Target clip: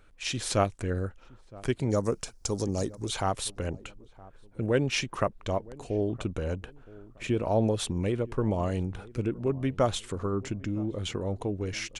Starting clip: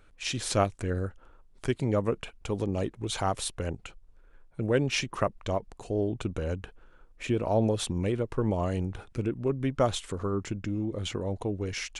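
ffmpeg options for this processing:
ffmpeg -i in.wav -filter_complex "[0:a]asettb=1/sr,asplit=3[link_01][link_02][link_03];[link_01]atrim=end=1.904[link_04];[link_02]atrim=start=1.9:end=3.09,asetpts=PTS-STARTPTS,afade=type=in:duration=0.004:curve=qsin,afade=type=out:start_time=1.186:duration=0.004:curve=qsin,highshelf=frequency=3900:width_type=q:width=3:gain=11[link_05];[link_03]atrim=start=3.086[link_06];[link_04][link_05]acrossfade=duration=0.004:curve1=hsin:curve2=qsin[link_07];[link_07][link_06]acrossfade=duration=0.004:curve1=qsin:curve2=hsin,asplit=2[link_08][link_09];[link_09]adelay=967,lowpass=frequency=820:poles=1,volume=-20dB,asplit=2[link_10][link_11];[link_11]adelay=967,lowpass=frequency=820:poles=1,volume=0.39,asplit=2[link_12][link_13];[link_13]adelay=967,lowpass=frequency=820:poles=1,volume=0.39[link_14];[link_08][link_10][link_12][link_14]amix=inputs=4:normalize=0" out.wav

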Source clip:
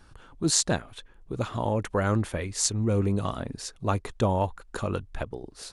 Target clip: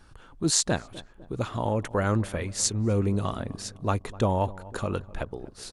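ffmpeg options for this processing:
ffmpeg -i in.wav -filter_complex "[0:a]asplit=2[link_01][link_02];[link_02]adelay=252,lowpass=frequency=1100:poles=1,volume=-18dB,asplit=2[link_03][link_04];[link_04]adelay=252,lowpass=frequency=1100:poles=1,volume=0.54,asplit=2[link_05][link_06];[link_06]adelay=252,lowpass=frequency=1100:poles=1,volume=0.54,asplit=2[link_07][link_08];[link_08]adelay=252,lowpass=frequency=1100:poles=1,volume=0.54,asplit=2[link_09][link_10];[link_10]adelay=252,lowpass=frequency=1100:poles=1,volume=0.54[link_11];[link_01][link_03][link_05][link_07][link_09][link_11]amix=inputs=6:normalize=0" out.wav

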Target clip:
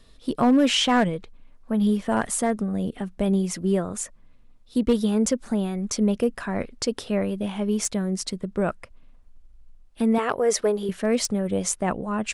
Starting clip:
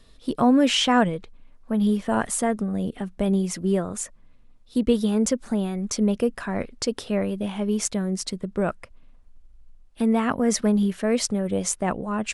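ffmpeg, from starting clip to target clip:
ffmpeg -i in.wav -filter_complex "[0:a]asettb=1/sr,asplit=3[link_01][link_02][link_03];[link_01]atrim=end=10.184[link_04];[link_02]atrim=start=10.18:end=10.89,asetpts=PTS-STARTPTS,afade=type=in:duration=0.004:curve=qsin,afade=type=out:start_time=0.706:duration=0.004:curve=qsin,lowshelf=frequency=310:width_type=q:width=3:gain=-7.5[link_05];[link_03]atrim=start=10.886[link_06];[link_04][link_05]acrossfade=duration=0.004:curve1=hsin:curve2=qsin[link_07];[link_07][link_06]acrossfade=duration=0.004:curve1=qsin:curve2=hsin,asoftclip=type=hard:threshold=-12.5dB" out.wav

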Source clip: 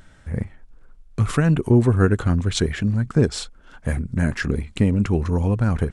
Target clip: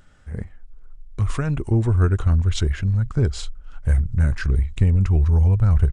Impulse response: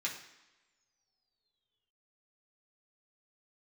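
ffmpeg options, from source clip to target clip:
-af "asubboost=boost=10:cutoff=81,asetrate=41625,aresample=44100,atempo=1.05946,volume=-4.5dB"

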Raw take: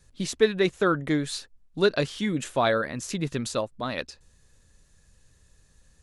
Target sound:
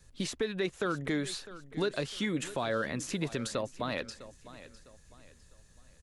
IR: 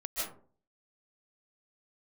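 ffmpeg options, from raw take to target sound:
-filter_complex "[0:a]acrossover=split=370|2600[link_01][link_02][link_03];[link_01]acompressor=threshold=-34dB:ratio=4[link_04];[link_02]acompressor=threshold=-29dB:ratio=4[link_05];[link_03]acompressor=threshold=-39dB:ratio=4[link_06];[link_04][link_05][link_06]amix=inputs=3:normalize=0,alimiter=limit=-21dB:level=0:latency=1:release=69,aecho=1:1:654|1308|1962:0.158|0.0555|0.0194"

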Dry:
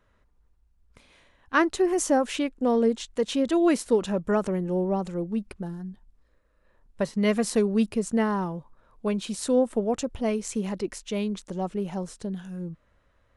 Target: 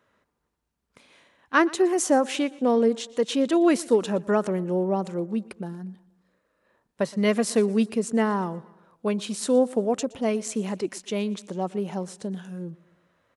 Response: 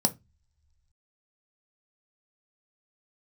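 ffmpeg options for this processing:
-af "highpass=170,aecho=1:1:119|238|357|476:0.0794|0.0421|0.0223|0.0118,volume=2dB"

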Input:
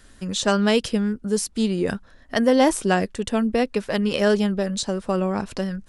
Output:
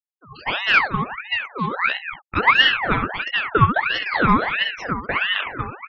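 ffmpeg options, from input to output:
ffmpeg -i in.wav -filter_complex "[0:a]asplit=2[link_01][link_02];[link_02]acrusher=samples=17:mix=1:aa=0.000001:lfo=1:lforange=17:lforate=1.6,volume=-9dB[link_03];[link_01][link_03]amix=inputs=2:normalize=0,flanger=delay=15.5:depth=5.4:speed=1,acrossover=split=480 3500:gain=0.178 1 0.0794[link_04][link_05][link_06];[link_04][link_05][link_06]amix=inputs=3:normalize=0,aecho=1:1:67.06|236.2:0.398|0.316,acrossover=split=740|2000[link_07][link_08][link_09];[link_07]acrusher=bits=4:mode=log:mix=0:aa=0.000001[link_10];[link_10][link_08][link_09]amix=inputs=3:normalize=0,aresample=22050,aresample=44100,dynaudnorm=framelen=370:gausssize=3:maxgain=10.5dB,highpass=frequency=90:poles=1,equalizer=frequency=480:width=2.7:gain=12,afftfilt=real='re*gte(hypot(re,im),0.0631)':imag='im*gte(hypot(re,im),0.0631)':win_size=1024:overlap=0.75,aeval=exprs='val(0)*sin(2*PI*1500*n/s+1500*0.6/1.5*sin(2*PI*1.5*n/s))':channel_layout=same,volume=-4.5dB" out.wav

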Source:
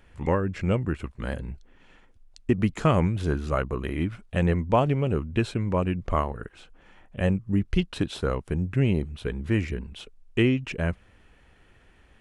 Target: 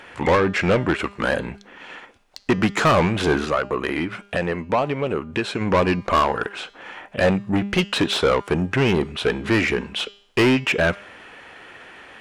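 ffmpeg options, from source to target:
ffmpeg -i in.wav -filter_complex "[0:a]asplit=3[link_01][link_02][link_03];[link_01]afade=type=out:start_time=3.44:duration=0.02[link_04];[link_02]acompressor=threshold=-32dB:ratio=4,afade=type=in:start_time=3.44:duration=0.02,afade=type=out:start_time=5.6:duration=0.02[link_05];[link_03]afade=type=in:start_time=5.6:duration=0.02[link_06];[link_04][link_05][link_06]amix=inputs=3:normalize=0,asplit=2[link_07][link_08];[link_08]highpass=frequency=720:poles=1,volume=28dB,asoftclip=type=tanh:threshold=-7dB[link_09];[link_07][link_09]amix=inputs=2:normalize=0,lowpass=frequency=2900:poles=1,volume=-6dB,lowshelf=frequency=100:gain=-10,bandreject=frequency=201.2:width_type=h:width=4,bandreject=frequency=402.4:width_type=h:width=4,bandreject=frequency=603.6:width_type=h:width=4,bandreject=frequency=804.8:width_type=h:width=4,bandreject=frequency=1006:width_type=h:width=4,bandreject=frequency=1207.2:width_type=h:width=4,bandreject=frequency=1408.4:width_type=h:width=4,bandreject=frequency=1609.6:width_type=h:width=4,bandreject=frequency=1810.8:width_type=h:width=4,bandreject=frequency=2012:width_type=h:width=4,bandreject=frequency=2213.2:width_type=h:width=4,bandreject=frequency=2414.4:width_type=h:width=4,bandreject=frequency=2615.6:width_type=h:width=4,bandreject=frequency=2816.8:width_type=h:width=4,bandreject=frequency=3018:width_type=h:width=4,bandreject=frequency=3219.2:width_type=h:width=4,bandreject=frequency=3420.4:width_type=h:width=4,bandreject=frequency=3621.6:width_type=h:width=4,bandreject=frequency=3822.8:width_type=h:width=4,bandreject=frequency=4024:width_type=h:width=4,bandreject=frequency=4225.2:width_type=h:width=4,bandreject=frequency=4426.4:width_type=h:width=4,bandreject=frequency=4627.6:width_type=h:width=4,bandreject=frequency=4828.8:width_type=h:width=4,bandreject=frequency=5030:width_type=h:width=4,bandreject=frequency=5231.2:width_type=h:width=4,bandreject=frequency=5432.4:width_type=h:width=4,bandreject=frequency=5633.6:width_type=h:width=4,bandreject=frequency=5834.8:width_type=h:width=4,bandreject=frequency=6036:width_type=h:width=4,bandreject=frequency=6237.2:width_type=h:width=4,bandreject=frequency=6438.4:width_type=h:width=4,bandreject=frequency=6639.6:width_type=h:width=4,bandreject=frequency=6840.8:width_type=h:width=4,bandreject=frequency=7042:width_type=h:width=4,bandreject=frequency=7243.2:width_type=h:width=4,bandreject=frequency=7444.4:width_type=h:width=4,bandreject=frequency=7645.6:width_type=h:width=4,bandreject=frequency=7846.8:width_type=h:width=4" out.wav

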